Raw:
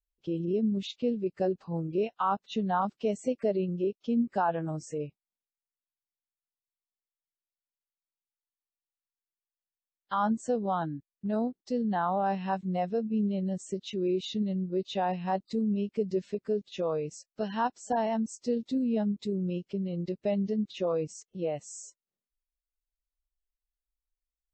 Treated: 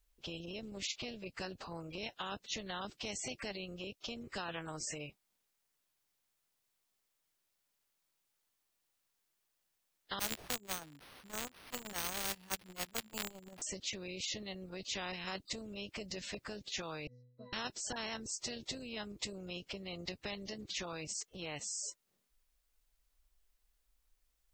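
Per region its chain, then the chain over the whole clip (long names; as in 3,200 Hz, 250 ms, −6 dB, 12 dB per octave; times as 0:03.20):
0:10.19–0:13.62: spike at every zero crossing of −28.5 dBFS + noise gate −27 dBFS, range −33 dB + bad sample-rate conversion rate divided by 6×, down none, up hold
0:17.07–0:17.53: Butterworth low-pass 5,400 Hz + notch filter 3,000 Hz, Q 5 + resonances in every octave B, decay 0.72 s
whole clip: dynamic equaliser 1,100 Hz, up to −8 dB, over −43 dBFS, Q 0.81; every bin compressed towards the loudest bin 4 to 1; level +5 dB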